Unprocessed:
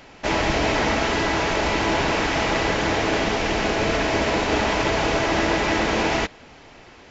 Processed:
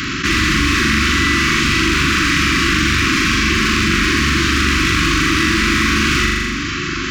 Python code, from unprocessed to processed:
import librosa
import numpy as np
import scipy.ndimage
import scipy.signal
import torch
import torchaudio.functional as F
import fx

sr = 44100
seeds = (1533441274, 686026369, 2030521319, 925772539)

p1 = fx.rattle_buzz(x, sr, strikes_db=-26.0, level_db=-17.0)
p2 = scipy.signal.sosfilt(scipy.signal.butter(4, 42.0, 'highpass', fs=sr, output='sos'), p1)
p3 = np.clip(p2, -10.0 ** (-20.0 / 20.0), 10.0 ** (-20.0 / 20.0))
p4 = scipy.signal.sosfilt(scipy.signal.cheby1(5, 1.0, [370.0, 1100.0], 'bandstop', fs=sr, output='sos'), p3)
p5 = p4 + fx.room_flutter(p4, sr, wall_m=7.1, rt60_s=0.68, dry=0)
p6 = fx.env_flatten(p5, sr, amount_pct=70)
y = p6 * 10.0 ** (7.5 / 20.0)